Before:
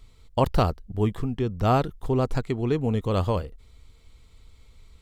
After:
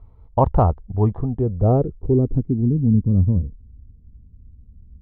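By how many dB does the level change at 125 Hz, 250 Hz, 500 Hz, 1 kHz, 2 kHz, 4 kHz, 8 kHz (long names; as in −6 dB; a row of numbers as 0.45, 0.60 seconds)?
+8.0 dB, +7.0 dB, +3.0 dB, +2.5 dB, below −10 dB, below −25 dB, can't be measured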